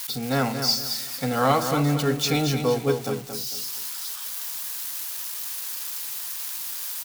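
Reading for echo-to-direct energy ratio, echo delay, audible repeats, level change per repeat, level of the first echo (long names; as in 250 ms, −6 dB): −7.5 dB, 226 ms, 3, −10.5 dB, −8.0 dB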